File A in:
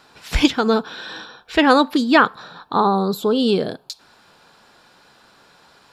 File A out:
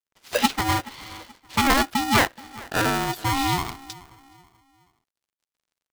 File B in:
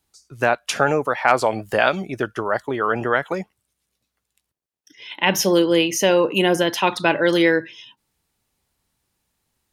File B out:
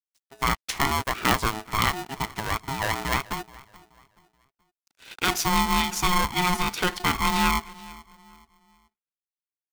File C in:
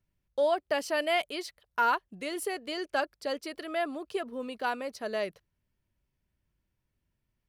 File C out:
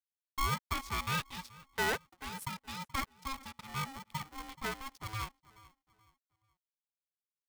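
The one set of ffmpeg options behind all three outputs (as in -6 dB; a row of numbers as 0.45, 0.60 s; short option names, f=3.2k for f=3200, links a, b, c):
-filter_complex "[0:a]aeval=exprs='sgn(val(0))*max(abs(val(0))-0.00631,0)':c=same,asplit=2[a][b];[b]adelay=428,lowpass=f=1.6k:p=1,volume=-20dB,asplit=2[c][d];[d]adelay=428,lowpass=f=1.6k:p=1,volume=0.37,asplit=2[e][f];[f]adelay=428,lowpass=f=1.6k:p=1,volume=0.37[g];[a][c][e][g]amix=inputs=4:normalize=0,aeval=exprs='val(0)*sgn(sin(2*PI*540*n/s))':c=same,volume=-5.5dB"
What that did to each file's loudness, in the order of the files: -5.0, -5.5, -6.0 LU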